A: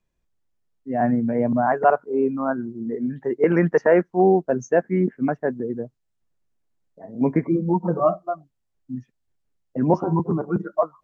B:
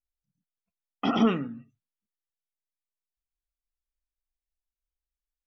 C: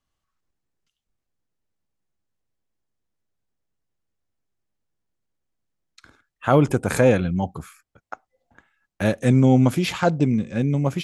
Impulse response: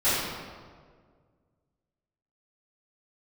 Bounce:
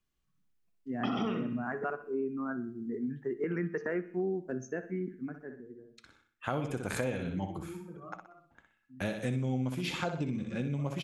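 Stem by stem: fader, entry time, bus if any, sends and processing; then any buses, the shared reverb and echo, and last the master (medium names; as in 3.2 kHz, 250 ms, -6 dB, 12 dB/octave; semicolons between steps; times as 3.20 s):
-7.5 dB, 0.00 s, no send, echo send -18 dB, high-order bell 720 Hz -11.5 dB 1.2 oct; auto duck -16 dB, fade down 1.55 s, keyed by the third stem
-0.5 dB, 0.00 s, no send, echo send -7 dB, none
-9.5 dB, 0.00 s, no send, echo send -7.5 dB, peaking EQ 2.9 kHz +4.5 dB 1.4 oct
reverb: none
echo: feedback delay 62 ms, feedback 38%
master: de-hum 112.2 Hz, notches 36; compression 5:1, threshold -30 dBFS, peak gain reduction 10.5 dB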